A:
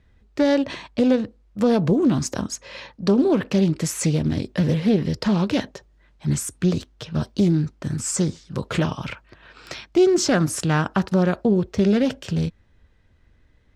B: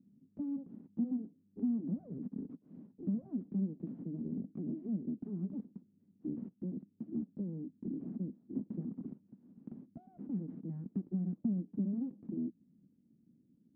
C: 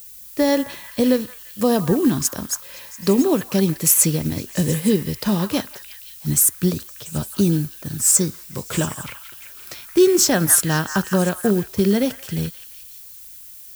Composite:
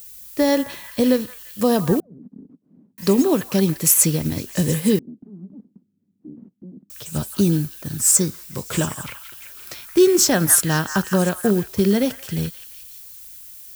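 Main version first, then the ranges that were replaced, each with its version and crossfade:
C
2.00–2.98 s: from B
4.99–6.90 s: from B
not used: A

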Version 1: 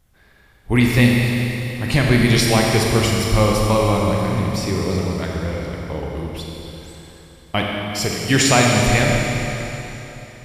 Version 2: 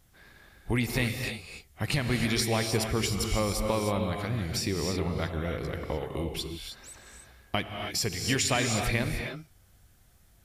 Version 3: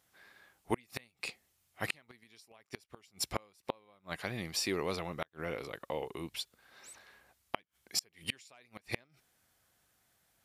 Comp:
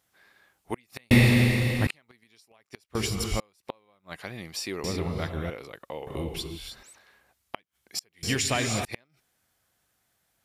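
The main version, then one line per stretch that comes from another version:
3
1.11–1.87 s: from 1
2.95–3.40 s: from 2
4.84–5.50 s: from 2
6.07–6.83 s: from 2
8.23–8.85 s: from 2

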